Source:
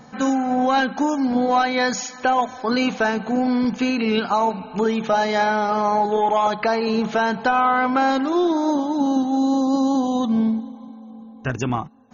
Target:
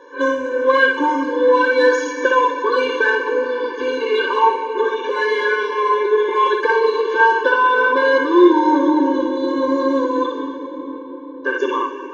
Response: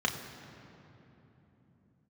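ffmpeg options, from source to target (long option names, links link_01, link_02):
-filter_complex "[0:a]asoftclip=type=tanh:threshold=-15.5dB[link_01];[1:a]atrim=start_sample=2205,asetrate=22491,aresample=44100[link_02];[link_01][link_02]afir=irnorm=-1:irlink=0,afftfilt=real='re*eq(mod(floor(b*sr/1024/300),2),1)':imag='im*eq(mod(floor(b*sr/1024/300),2),1)':win_size=1024:overlap=0.75,volume=-3dB"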